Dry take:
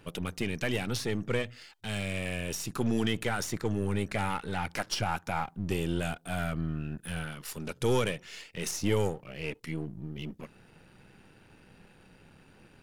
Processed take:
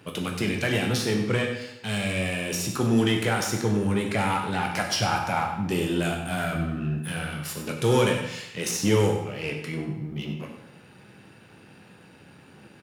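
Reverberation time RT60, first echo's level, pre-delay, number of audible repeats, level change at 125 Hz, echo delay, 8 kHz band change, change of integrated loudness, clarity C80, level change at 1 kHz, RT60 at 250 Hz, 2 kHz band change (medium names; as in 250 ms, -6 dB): 0.85 s, -11.5 dB, 12 ms, 1, +6.5 dB, 96 ms, +6.5 dB, +7.0 dB, 6.5 dB, +7.5 dB, 0.85 s, +7.0 dB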